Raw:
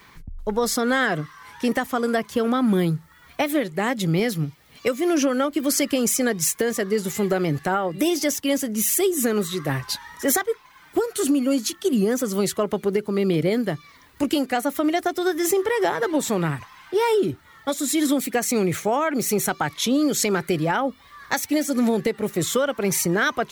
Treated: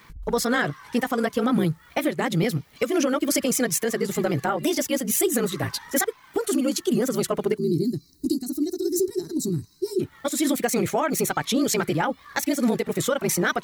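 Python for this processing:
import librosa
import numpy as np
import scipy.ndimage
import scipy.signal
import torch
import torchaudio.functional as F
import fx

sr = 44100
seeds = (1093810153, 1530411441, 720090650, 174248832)

y = fx.stretch_grains(x, sr, factor=0.58, grain_ms=34.0)
y = fx.spec_box(y, sr, start_s=7.58, length_s=2.42, low_hz=430.0, high_hz=3800.0, gain_db=-28)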